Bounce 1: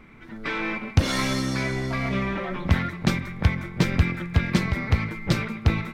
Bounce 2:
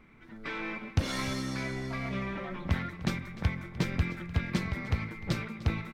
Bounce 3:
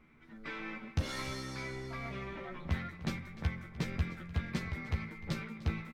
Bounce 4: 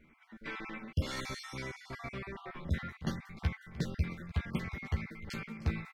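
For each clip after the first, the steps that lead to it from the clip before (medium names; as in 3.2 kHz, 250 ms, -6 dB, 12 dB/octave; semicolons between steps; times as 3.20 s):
delay 301 ms -17.5 dB; trim -8.5 dB
doubling 13 ms -5.5 dB; trim -6.5 dB
random holes in the spectrogram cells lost 29%; trim +1 dB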